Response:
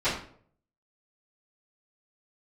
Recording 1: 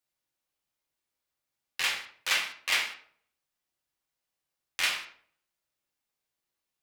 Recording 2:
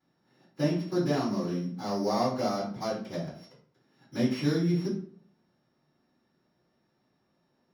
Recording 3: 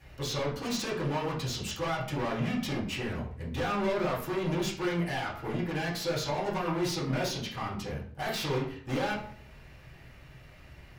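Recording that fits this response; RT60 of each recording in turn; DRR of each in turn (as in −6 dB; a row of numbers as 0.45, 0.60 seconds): 2; 0.55, 0.55, 0.55 seconds; −1.0, −17.5, −8.0 decibels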